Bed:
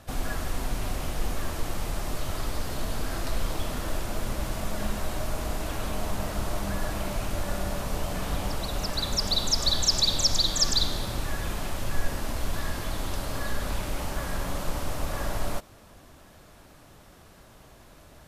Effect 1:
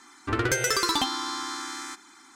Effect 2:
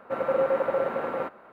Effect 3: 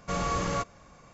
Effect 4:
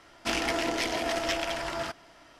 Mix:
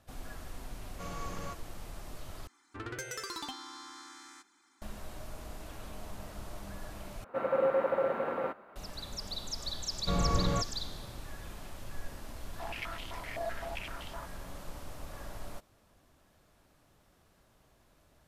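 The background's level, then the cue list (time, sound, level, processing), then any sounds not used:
bed -14 dB
0.91 s: add 3 -13 dB
2.47 s: replace with 1 -15.5 dB
7.24 s: replace with 2 -4 dB
9.99 s: add 3 -4.5 dB + tilt EQ -2.5 dB/octave
12.34 s: add 4 -3 dB + step-sequenced band-pass 7.8 Hz 640–3200 Hz

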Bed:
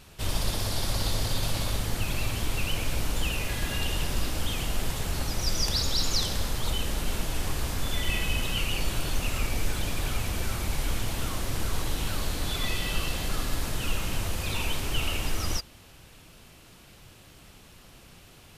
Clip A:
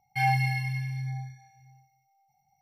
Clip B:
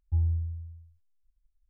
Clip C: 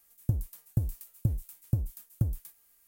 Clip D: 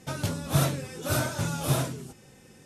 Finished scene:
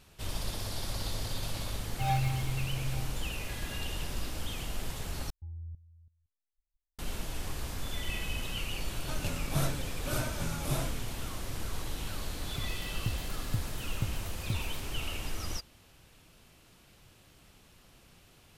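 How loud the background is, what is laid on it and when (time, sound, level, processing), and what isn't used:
bed -7.5 dB
1.83 s: add A -3.5 dB + median filter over 25 samples
5.30 s: replace with B -9 dB + level held to a coarse grid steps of 16 dB
9.01 s: add D -7.5 dB
12.29 s: add C -13 dB + level rider gain up to 7 dB

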